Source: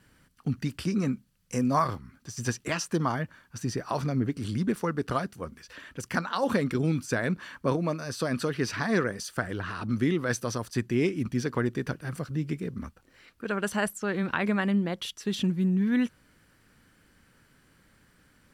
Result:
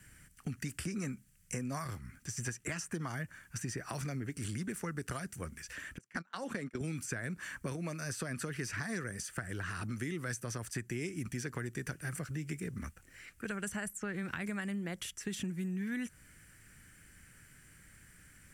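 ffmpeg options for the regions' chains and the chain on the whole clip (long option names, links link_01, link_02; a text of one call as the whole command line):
ffmpeg -i in.wav -filter_complex "[0:a]asettb=1/sr,asplit=3[link_01][link_02][link_03];[link_01]atrim=end=5.984[link_04];[link_02]atrim=start=5.98:end=6.81,asetpts=PTS-STARTPTS,afade=type=in:duration=0.004:curve=qsin,afade=type=out:start_time=0.826:duration=0.004:curve=qsin,highpass=230,aemphasis=mode=reproduction:type=50fm,agate=range=-26dB:threshold=-32dB:ratio=16:release=100:detection=peak[link_05];[link_03]atrim=start=6.806[link_06];[link_04][link_05]acrossfade=duration=0.004:curve1=hsin:curve2=qsin[link_07];[link_07][link_06]acrossfade=duration=0.004:curve1=qsin:curve2=hsin,acompressor=threshold=-30dB:ratio=2,equalizer=frequency=250:width_type=o:width=1:gain=-7,equalizer=frequency=500:width_type=o:width=1:gain=-8,equalizer=frequency=1000:width_type=o:width=1:gain=-11,equalizer=frequency=2000:width_type=o:width=1:gain=5,equalizer=frequency=4000:width_type=o:width=1:gain=-11,equalizer=frequency=8000:width_type=o:width=1:gain=8,acrossover=split=280|1800|3800[link_08][link_09][link_10][link_11];[link_08]acompressor=threshold=-46dB:ratio=4[link_12];[link_09]acompressor=threshold=-45dB:ratio=4[link_13];[link_10]acompressor=threshold=-59dB:ratio=4[link_14];[link_11]acompressor=threshold=-49dB:ratio=4[link_15];[link_12][link_13][link_14][link_15]amix=inputs=4:normalize=0,volume=5dB" out.wav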